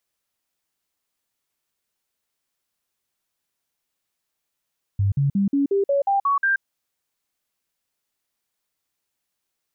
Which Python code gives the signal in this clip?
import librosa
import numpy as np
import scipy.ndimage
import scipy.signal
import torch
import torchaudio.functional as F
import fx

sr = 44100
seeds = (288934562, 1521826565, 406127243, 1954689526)

y = fx.stepped_sweep(sr, from_hz=99.1, direction='up', per_octave=2, tones=9, dwell_s=0.13, gap_s=0.05, level_db=-16.5)